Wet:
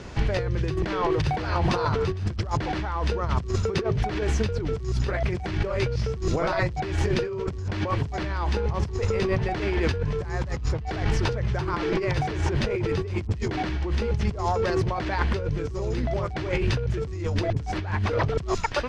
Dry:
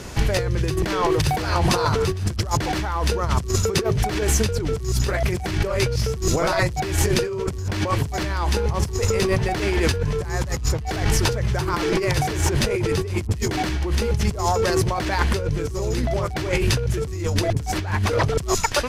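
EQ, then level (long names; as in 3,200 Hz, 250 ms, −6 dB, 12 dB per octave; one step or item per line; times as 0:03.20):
dynamic equaliser 7,700 Hz, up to −4 dB, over −39 dBFS, Q 0.89
high-frequency loss of the air 120 metres
−3.5 dB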